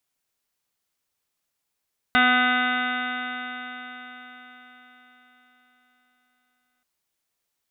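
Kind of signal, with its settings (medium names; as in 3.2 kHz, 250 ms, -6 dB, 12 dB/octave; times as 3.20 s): stretched partials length 4.68 s, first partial 248 Hz, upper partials -14/1/-14/1/5/-9.5/1/-9.5/-10/-5.5/-15/-12/-5 dB, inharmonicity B 0.00058, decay 4.72 s, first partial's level -23.5 dB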